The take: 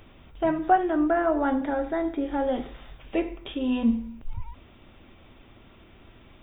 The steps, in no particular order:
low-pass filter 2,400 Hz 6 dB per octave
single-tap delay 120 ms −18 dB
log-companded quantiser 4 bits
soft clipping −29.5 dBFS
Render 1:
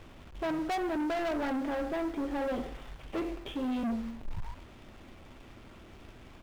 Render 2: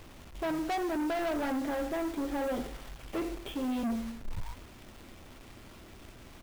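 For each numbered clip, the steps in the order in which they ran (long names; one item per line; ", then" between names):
single-tap delay, then log-companded quantiser, then low-pass filter, then soft clipping
low-pass filter, then log-companded quantiser, then soft clipping, then single-tap delay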